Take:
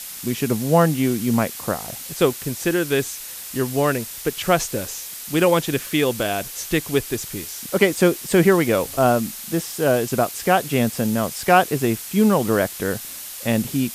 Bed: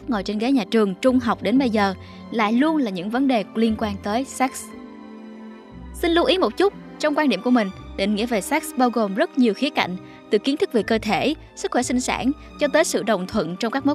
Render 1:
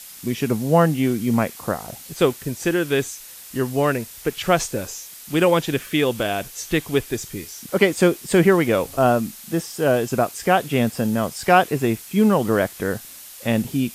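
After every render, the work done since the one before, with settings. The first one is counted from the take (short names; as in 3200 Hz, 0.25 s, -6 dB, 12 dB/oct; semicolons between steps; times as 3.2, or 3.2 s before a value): noise print and reduce 6 dB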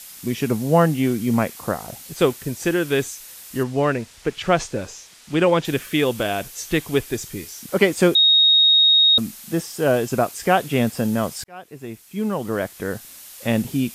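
3.63–5.65 air absorption 69 m; 8.15–9.18 bleep 3750 Hz -11 dBFS; 11.44–13.43 fade in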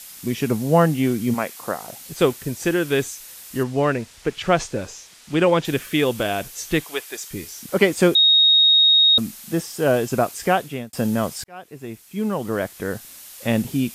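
1.33–2 HPF 610 Hz -> 270 Hz 6 dB/oct; 6.84–7.31 HPF 660 Hz; 10.45–10.93 fade out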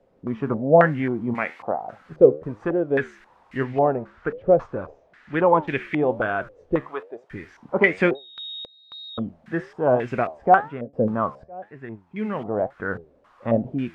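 flange 1.1 Hz, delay 6.9 ms, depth 8.1 ms, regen +78%; stepped low-pass 3.7 Hz 510–2100 Hz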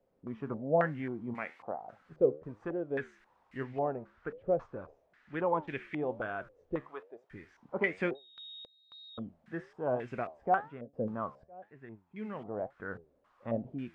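gain -13 dB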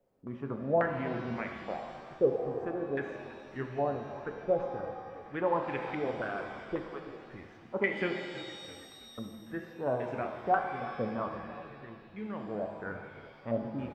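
frequency-shifting echo 0.328 s, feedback 46%, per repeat -41 Hz, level -16 dB; shimmer reverb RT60 1.9 s, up +7 st, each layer -8 dB, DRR 5 dB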